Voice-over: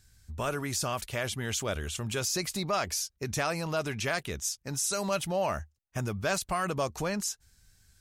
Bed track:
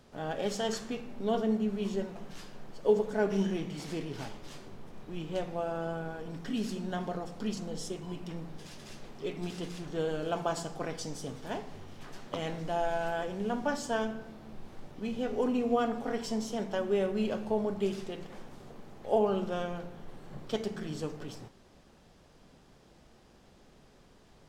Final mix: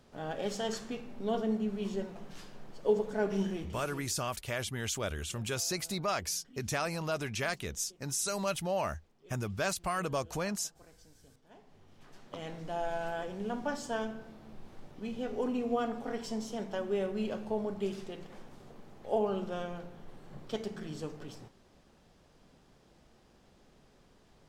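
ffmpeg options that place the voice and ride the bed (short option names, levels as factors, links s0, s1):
-filter_complex "[0:a]adelay=3350,volume=0.708[s0];[1:a]volume=7.08,afade=t=out:st=3.42:d=0.71:silence=0.0944061,afade=t=in:st=11.49:d=1.43:silence=0.105925[s1];[s0][s1]amix=inputs=2:normalize=0"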